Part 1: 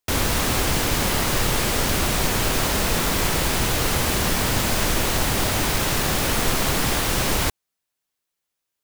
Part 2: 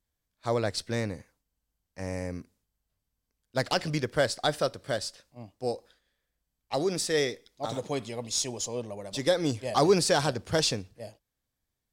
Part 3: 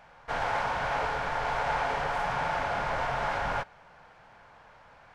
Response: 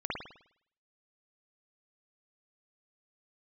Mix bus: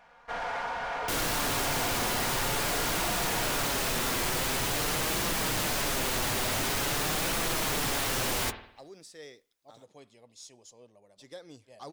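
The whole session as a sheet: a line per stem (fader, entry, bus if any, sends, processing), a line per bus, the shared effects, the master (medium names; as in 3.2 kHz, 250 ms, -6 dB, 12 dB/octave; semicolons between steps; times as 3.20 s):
+0.5 dB, 1.00 s, send -17.5 dB, flange 0.47 Hz, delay 5.9 ms, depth 2.3 ms, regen -31%
-19.5 dB, 2.05 s, no send, none
-3.0 dB, 0.00 s, no send, comb 4.2 ms, depth 48%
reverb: on, pre-delay 51 ms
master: bass shelf 200 Hz -7 dB; saturation -25.5 dBFS, distortion -11 dB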